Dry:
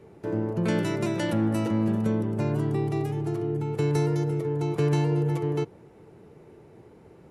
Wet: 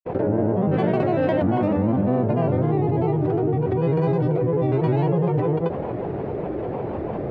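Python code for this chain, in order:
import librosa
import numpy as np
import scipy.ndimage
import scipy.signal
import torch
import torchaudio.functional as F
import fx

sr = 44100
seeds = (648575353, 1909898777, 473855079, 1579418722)

y = fx.peak_eq(x, sr, hz=650.0, db=10.0, octaves=0.62)
y = fx.granulator(y, sr, seeds[0], grain_ms=100.0, per_s=20.0, spray_ms=100.0, spread_st=3)
y = fx.air_absorb(y, sr, metres=400.0)
y = fx.env_flatten(y, sr, amount_pct=70)
y = y * librosa.db_to_amplitude(2.5)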